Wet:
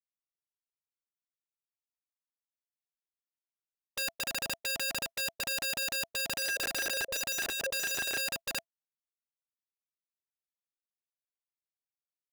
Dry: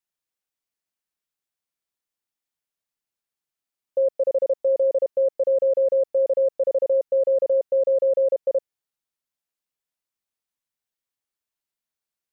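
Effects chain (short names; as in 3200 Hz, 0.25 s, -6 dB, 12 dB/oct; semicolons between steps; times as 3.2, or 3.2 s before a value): 6.09–8.17 reverse delay 0.269 s, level -9.5 dB; gate -27 dBFS, range -22 dB; low shelf 240 Hz +6 dB; notch 670 Hz, Q 21; wrapped overs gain 25 dB; gain -4 dB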